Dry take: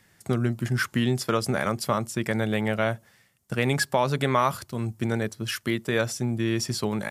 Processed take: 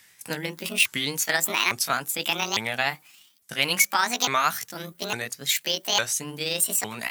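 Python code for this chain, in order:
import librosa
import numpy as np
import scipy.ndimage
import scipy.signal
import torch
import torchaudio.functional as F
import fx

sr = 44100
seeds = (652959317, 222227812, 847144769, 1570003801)

y = fx.pitch_ramps(x, sr, semitones=10.5, every_ms=855)
y = fx.tilt_shelf(y, sr, db=-10.0, hz=970.0)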